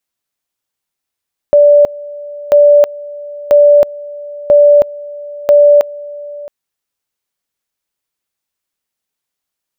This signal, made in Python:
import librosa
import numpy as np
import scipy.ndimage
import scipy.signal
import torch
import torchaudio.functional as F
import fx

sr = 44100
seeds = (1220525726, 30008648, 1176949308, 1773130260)

y = fx.two_level_tone(sr, hz=583.0, level_db=-2.5, drop_db=21.0, high_s=0.32, low_s=0.67, rounds=5)